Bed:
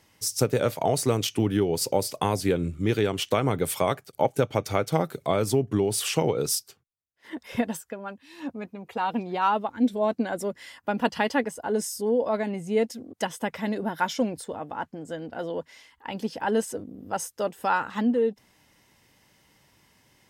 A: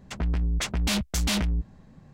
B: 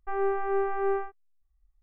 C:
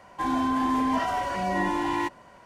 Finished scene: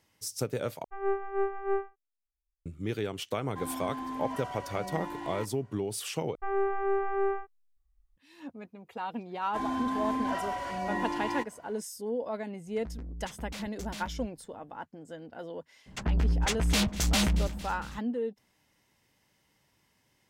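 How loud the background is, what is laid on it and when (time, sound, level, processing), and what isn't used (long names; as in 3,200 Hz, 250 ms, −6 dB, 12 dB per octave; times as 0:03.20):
bed −9 dB
0:00.84: overwrite with B −1 dB + expander for the loud parts 2.5 to 1, over −37 dBFS
0:03.37: mix in C −12.5 dB
0:06.35: overwrite with B −1.5 dB
0:09.35: mix in C −6.5 dB
0:12.65: mix in A −15.5 dB + adaptive Wiener filter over 15 samples
0:15.86: mix in A −0.5 dB + delay that swaps between a low-pass and a high-pass 114 ms, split 1,000 Hz, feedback 79%, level −14 dB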